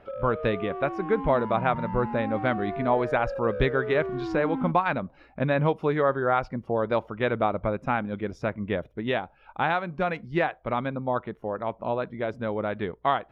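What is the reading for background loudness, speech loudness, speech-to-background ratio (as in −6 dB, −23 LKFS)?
−34.0 LKFS, −27.5 LKFS, 6.5 dB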